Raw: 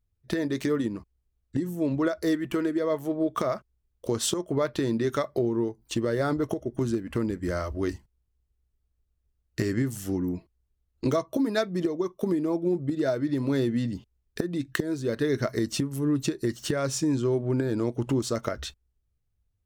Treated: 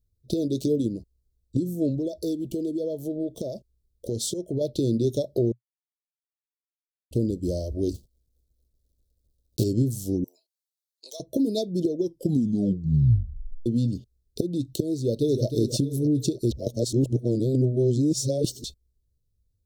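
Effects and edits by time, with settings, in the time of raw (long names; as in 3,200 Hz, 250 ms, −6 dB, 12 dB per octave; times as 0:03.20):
0:01.90–0:04.61: downward compressor 2.5 to 1, threshold −28 dBFS
0:05.52–0:07.11: silence
0:07.94–0:09.65: one scale factor per block 3 bits
0:10.24–0:11.20: high-pass filter 910 Hz 24 dB per octave
0:11.99: tape stop 1.67 s
0:14.97–0:15.45: delay throw 310 ms, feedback 40%, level −7 dB
0:16.51–0:18.64: reverse
whole clip: elliptic band-stop filter 560–3,900 Hz, stop band 80 dB; dynamic equaliser 120 Hz, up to +5 dB, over −44 dBFS, Q 4.4; level +3 dB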